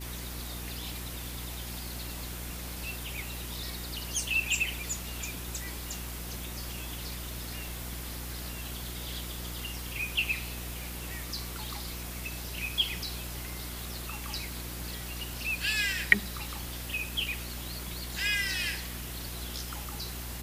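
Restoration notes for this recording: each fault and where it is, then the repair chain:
hum 60 Hz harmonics 6 -41 dBFS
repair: de-hum 60 Hz, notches 6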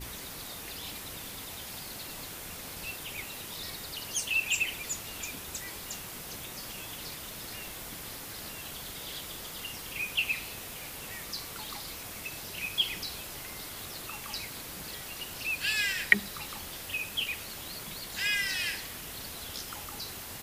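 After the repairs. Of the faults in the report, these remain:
nothing left

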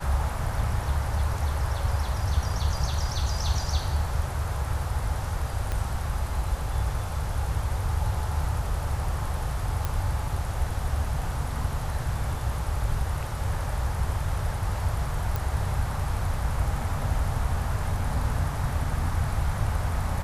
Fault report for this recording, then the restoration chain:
5.72 s: pop -16 dBFS
9.85 s: pop
15.36 s: pop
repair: de-click

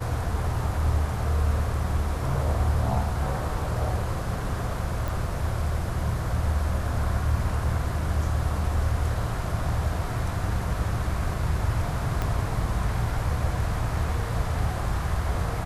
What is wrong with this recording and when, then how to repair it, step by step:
5.08 s: pop
12.22 s: pop -14 dBFS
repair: de-click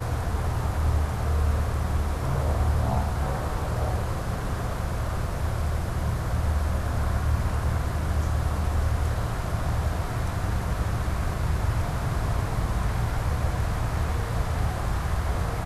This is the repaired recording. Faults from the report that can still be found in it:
12.22 s: pop

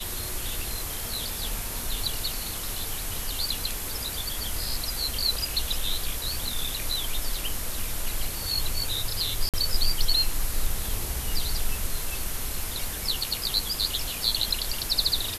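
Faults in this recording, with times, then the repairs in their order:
9.49–9.54 s: dropout 47 ms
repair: interpolate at 9.49 s, 47 ms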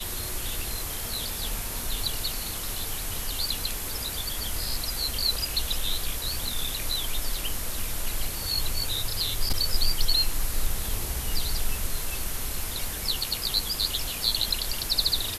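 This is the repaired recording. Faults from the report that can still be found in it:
nothing left

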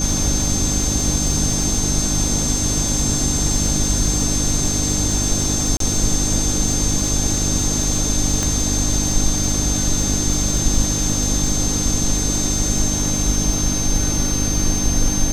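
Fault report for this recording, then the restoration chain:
crackle 56 per s -24 dBFS
hum 50 Hz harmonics 6 -24 dBFS
whine 6.3 kHz -22 dBFS
5.77–5.80 s: dropout 33 ms
8.43 s: pop -7 dBFS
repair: de-click; de-hum 50 Hz, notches 6; band-stop 6.3 kHz, Q 30; interpolate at 5.77 s, 33 ms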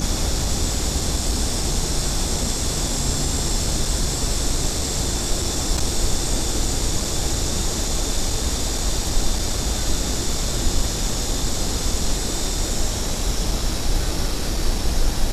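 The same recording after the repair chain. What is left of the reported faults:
nothing left

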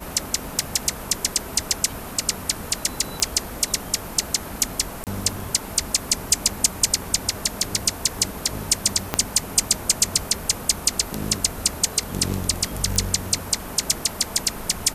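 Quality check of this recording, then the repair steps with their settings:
0.59 s: pop
3.20 s: pop -6 dBFS
5.04–5.07 s: dropout 28 ms
9.14 s: pop -4 dBFS
12.96 s: pop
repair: de-click; interpolate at 5.04 s, 28 ms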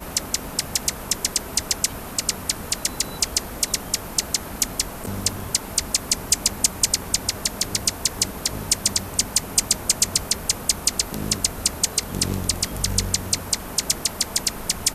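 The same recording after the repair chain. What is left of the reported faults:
9.14 s: pop

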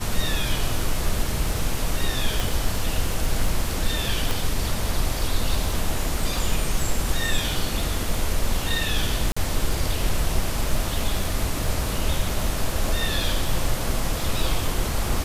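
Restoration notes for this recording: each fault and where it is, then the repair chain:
crackle 36 per s -28 dBFS
2.40 s: pop
4.31 s: pop
9.32–9.37 s: dropout 45 ms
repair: de-click; interpolate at 9.32 s, 45 ms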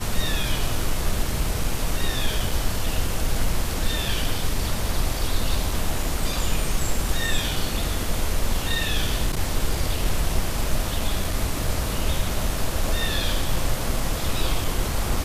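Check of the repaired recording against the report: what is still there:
4.31 s: pop

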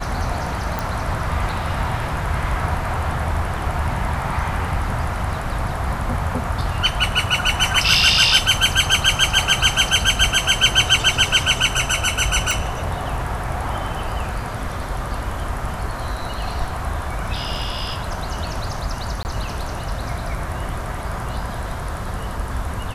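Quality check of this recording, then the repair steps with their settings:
0.79 s: pop
12.51 s: pop
19.23–19.25 s: dropout 19 ms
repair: de-click; interpolate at 19.23 s, 19 ms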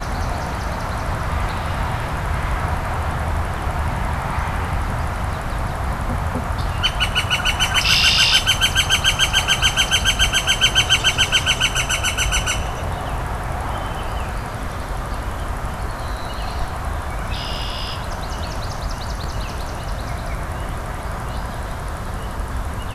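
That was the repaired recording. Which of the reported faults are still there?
nothing left

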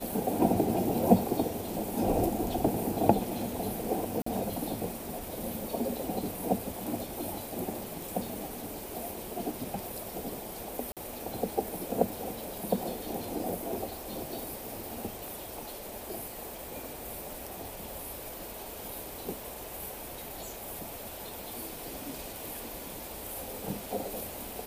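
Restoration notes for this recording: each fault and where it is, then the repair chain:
4.22–4.26 s: dropout 44 ms
10.92–10.97 s: dropout 47 ms
15.28 s: pop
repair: de-click; interpolate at 4.22 s, 44 ms; interpolate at 10.92 s, 47 ms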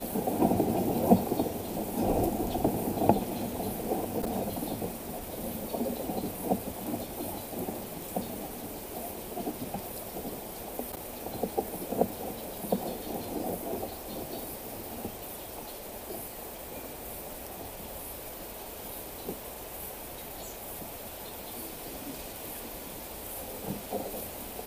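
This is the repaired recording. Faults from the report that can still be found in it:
nothing left

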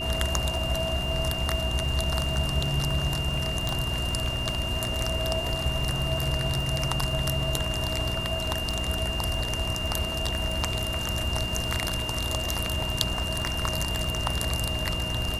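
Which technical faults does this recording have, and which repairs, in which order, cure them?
crackle 34 per s -33 dBFS
hum 60 Hz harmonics 6 -34 dBFS
whine 2.8 kHz -31 dBFS
3.69 s: pop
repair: de-click; de-hum 60 Hz, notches 6; band-stop 2.8 kHz, Q 30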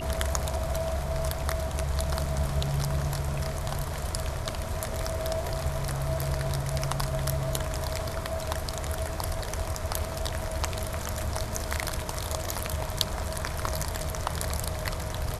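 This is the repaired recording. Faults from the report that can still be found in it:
nothing left

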